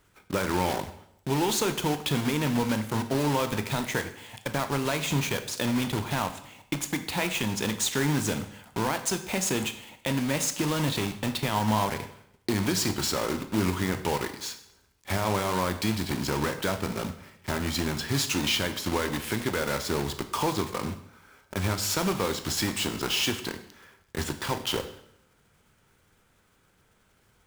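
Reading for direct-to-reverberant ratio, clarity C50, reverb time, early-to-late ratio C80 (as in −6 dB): 8.5 dB, 11.5 dB, 0.75 s, 14.0 dB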